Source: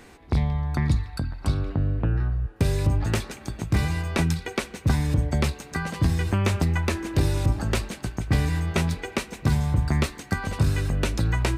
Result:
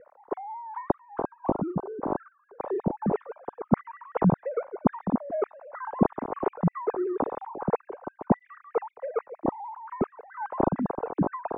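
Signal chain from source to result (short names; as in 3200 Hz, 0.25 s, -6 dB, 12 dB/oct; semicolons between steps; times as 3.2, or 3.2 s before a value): sine-wave speech; Chebyshev low-pass 1000 Hz, order 3; noise-modulated level, depth 60%; gain -2 dB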